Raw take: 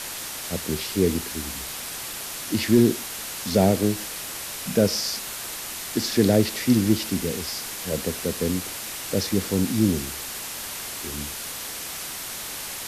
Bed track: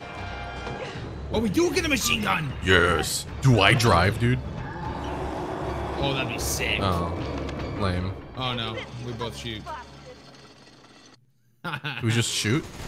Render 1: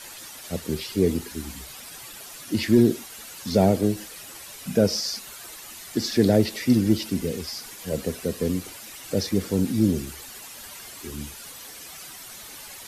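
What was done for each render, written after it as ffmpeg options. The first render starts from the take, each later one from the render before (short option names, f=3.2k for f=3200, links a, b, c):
-af "afftdn=nr=11:nf=-34"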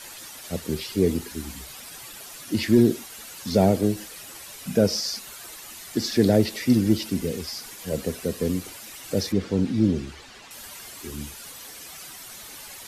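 -filter_complex "[0:a]asettb=1/sr,asplit=3[a][b][c];[a]atrim=end=9.324[d];[b]atrim=start=9.32:end=10.51,asetpts=PTS-STARTPTS,afade=t=in:d=0.004:c=qsin,afade=t=out:st=1.186:d=0.004:c=qsin,lowpass=4.5k[e];[c]atrim=start=10.506[f];[d][e]acrossfade=d=0.004:c1=hsin:c2=qsin[g];[g][f]acrossfade=d=0.004:c1=qsin:c2=hsin"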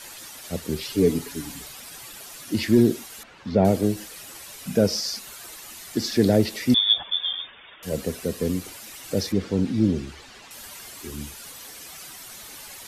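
-filter_complex "[0:a]asettb=1/sr,asplit=3[a][b][c];[a]atrim=end=0.824[d];[b]atrim=start=0.82:end=1.68,asetpts=PTS-STARTPTS,afade=t=in:d=0.004:c=qsin,afade=t=out:st=0.856:d=0.004:c=qsin,aecho=1:1:7:0.65,atrim=end_sample=37926[e];[c]atrim=start=1.676[f];[d][e]acrossfade=d=0.004:c1=hsin:c2=qsin[g];[g][f]acrossfade=d=0.004:c1=qsin:c2=hsin,asettb=1/sr,asplit=3[h][i][j];[h]atrim=end=3.234[k];[i]atrim=start=3.23:end=3.65,asetpts=PTS-STARTPTS,afade=t=in:d=0.004:c=qsin,afade=t=out:st=0.416:d=0.004:c=qsin,lowpass=2.3k[l];[j]atrim=start=3.646[m];[k][l]acrossfade=d=0.004:c1=hsin:c2=qsin[n];[n][m]acrossfade=d=0.004:c1=qsin:c2=hsin,asettb=1/sr,asplit=3[o][p][q];[o]atrim=end=6.744[r];[p]atrim=start=6.74:end=7.83,asetpts=PTS-STARTPTS,afade=t=in:d=0.004:c=qsin,afade=t=out:st=1.086:d=0.004:c=qsin,lowpass=f=3.1k:t=q:w=0.5098,lowpass=f=3.1k:t=q:w=0.6013,lowpass=f=3.1k:t=q:w=0.9,lowpass=f=3.1k:t=q:w=2.563,afreqshift=-3700[s];[q]atrim=start=7.826[t];[r][s]acrossfade=d=0.004:c1=hsin:c2=qsin[u];[u][t]acrossfade=d=0.004:c1=qsin:c2=hsin"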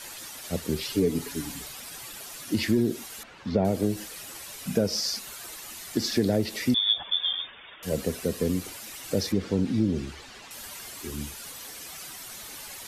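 -af "acompressor=threshold=-20dB:ratio=4"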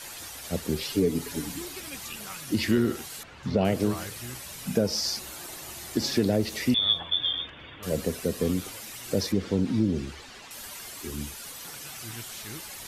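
-filter_complex "[1:a]volume=-19dB[a];[0:a][a]amix=inputs=2:normalize=0"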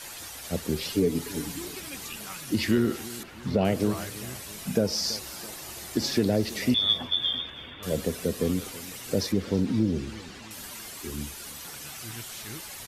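-af "aecho=1:1:331|662|993|1324:0.119|0.0559|0.0263|0.0123"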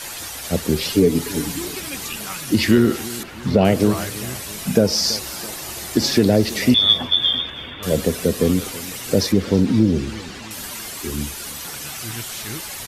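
-af "volume=9dB,alimiter=limit=-2dB:level=0:latency=1"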